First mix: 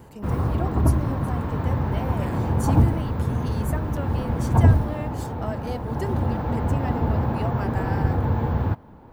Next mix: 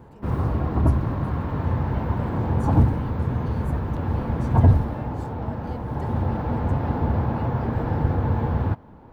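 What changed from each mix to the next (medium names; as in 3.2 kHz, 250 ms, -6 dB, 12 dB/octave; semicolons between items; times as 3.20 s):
speech -10.0 dB; master: add treble shelf 7.6 kHz -9.5 dB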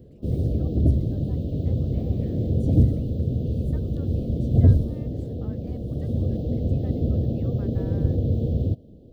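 speech -8.0 dB; background: add inverse Chebyshev band-stop 870–2200 Hz, stop band 40 dB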